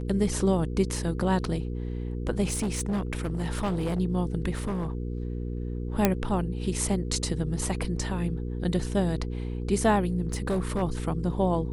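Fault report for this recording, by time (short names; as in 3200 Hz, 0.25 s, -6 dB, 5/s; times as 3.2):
hum 60 Hz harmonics 8 -32 dBFS
0.96 gap 2.2 ms
2.48–4 clipped -24 dBFS
4.51–4.93 clipped -26 dBFS
6.05 pop -6 dBFS
10.27–10.83 clipped -22.5 dBFS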